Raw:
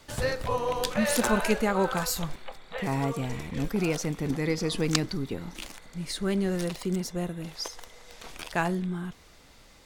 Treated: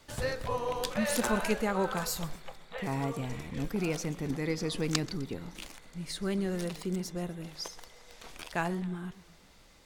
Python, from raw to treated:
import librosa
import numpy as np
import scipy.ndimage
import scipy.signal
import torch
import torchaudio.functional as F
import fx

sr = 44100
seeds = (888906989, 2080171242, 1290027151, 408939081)

y = fx.echo_warbled(x, sr, ms=126, feedback_pct=52, rate_hz=2.8, cents=210, wet_db=-19.0)
y = F.gain(torch.from_numpy(y), -4.5).numpy()